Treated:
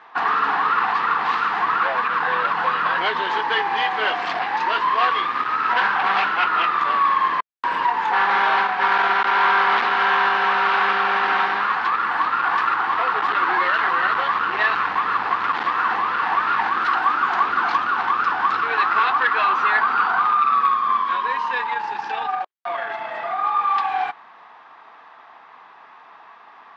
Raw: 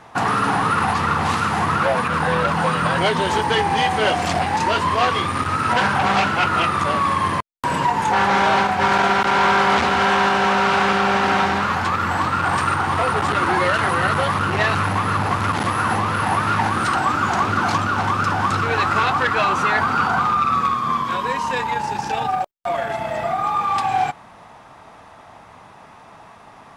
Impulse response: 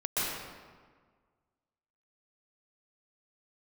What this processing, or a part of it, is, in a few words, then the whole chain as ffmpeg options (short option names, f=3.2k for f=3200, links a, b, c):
phone earpiece: -af "highpass=470,equalizer=f=580:t=q:w=4:g=-8,equalizer=f=1.1k:t=q:w=4:g=5,equalizer=f=1.7k:t=q:w=4:g=5,lowpass=f=4.2k:w=0.5412,lowpass=f=4.2k:w=1.3066,volume=-2.5dB"